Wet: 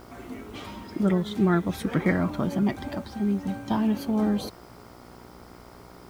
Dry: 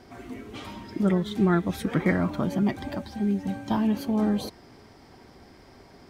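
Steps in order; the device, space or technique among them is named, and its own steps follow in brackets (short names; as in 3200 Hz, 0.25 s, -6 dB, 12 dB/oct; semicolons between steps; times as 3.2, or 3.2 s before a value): video cassette with head-switching buzz (buzz 60 Hz, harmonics 24, -50 dBFS -2 dB/oct; white noise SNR 35 dB)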